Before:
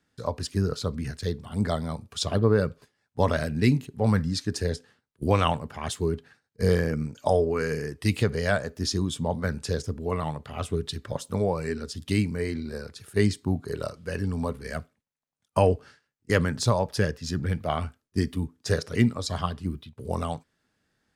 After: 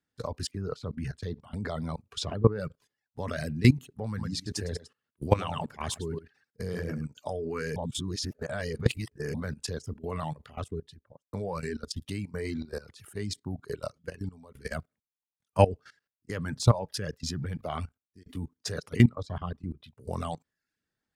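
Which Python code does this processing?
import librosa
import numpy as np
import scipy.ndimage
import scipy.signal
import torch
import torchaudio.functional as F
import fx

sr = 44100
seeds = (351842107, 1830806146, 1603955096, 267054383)

y = fx.lowpass(x, sr, hz=3800.0, slope=6, at=(0.51, 2.6))
y = fx.echo_single(y, sr, ms=105, db=-7.0, at=(4.07, 7.06))
y = fx.studio_fade_out(y, sr, start_s=10.26, length_s=1.07)
y = fx.lowpass(y, sr, hz=1200.0, slope=6, at=(19.09, 19.84))
y = fx.edit(y, sr, fx.reverse_span(start_s=7.76, length_s=1.58),
    fx.fade_out_to(start_s=13.27, length_s=1.28, floor_db=-11.5),
    fx.fade_out_span(start_s=17.65, length_s=0.61), tone=tone)
y = fx.dereverb_blind(y, sr, rt60_s=0.54)
y = fx.dynamic_eq(y, sr, hz=130.0, q=2.5, threshold_db=-37.0, ratio=4.0, max_db=4)
y = fx.level_steps(y, sr, step_db=18)
y = y * librosa.db_to_amplitude(3.0)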